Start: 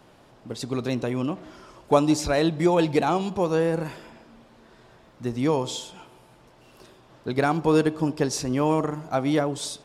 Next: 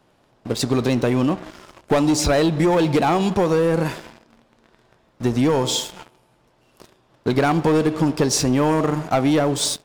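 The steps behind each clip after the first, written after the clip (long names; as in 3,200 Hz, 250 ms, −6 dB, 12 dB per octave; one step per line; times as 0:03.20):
leveller curve on the samples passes 3
downward compressor, threshold −15 dBFS, peak gain reduction 6.5 dB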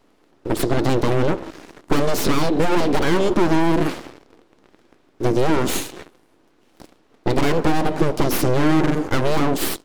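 full-wave rectification
parametric band 320 Hz +12 dB 1.1 octaves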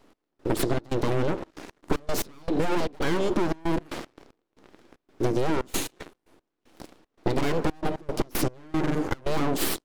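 downward compressor, threshold −20 dBFS, peak gain reduction 8.5 dB
gate pattern "x..xxx.xxxx.x.x." 115 BPM −24 dB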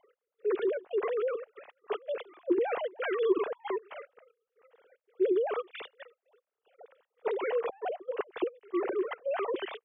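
three sine waves on the formant tracks
level −6.5 dB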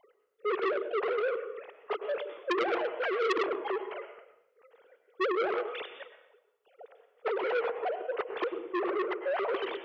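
on a send at −8 dB: convolution reverb RT60 0.75 s, pre-delay 92 ms
on the sum: saturating transformer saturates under 2,400 Hz
level +2.5 dB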